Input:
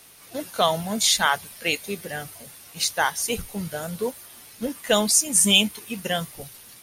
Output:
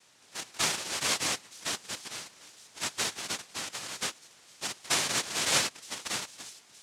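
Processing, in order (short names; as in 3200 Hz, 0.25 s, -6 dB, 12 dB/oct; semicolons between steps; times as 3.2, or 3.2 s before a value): noise vocoder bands 1; thin delay 0.918 s, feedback 46%, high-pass 3900 Hz, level -19.5 dB; gain -8.5 dB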